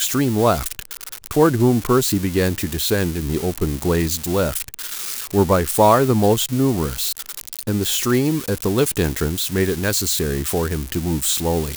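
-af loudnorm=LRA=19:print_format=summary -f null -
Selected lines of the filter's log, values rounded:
Input Integrated:    -19.6 LUFS
Input True Peak:      -1.9 dBTP
Input LRA:             2.1 LU
Input Threshold:     -29.7 LUFS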